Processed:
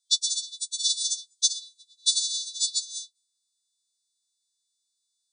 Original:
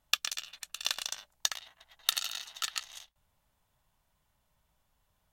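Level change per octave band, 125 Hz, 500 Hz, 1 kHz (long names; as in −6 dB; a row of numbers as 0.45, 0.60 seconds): can't be measured, below −35 dB, below −40 dB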